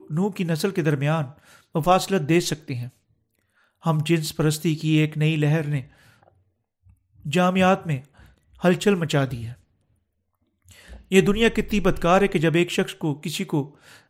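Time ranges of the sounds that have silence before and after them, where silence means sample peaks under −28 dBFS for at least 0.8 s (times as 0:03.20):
0:03.86–0:05.81
0:07.26–0:09.49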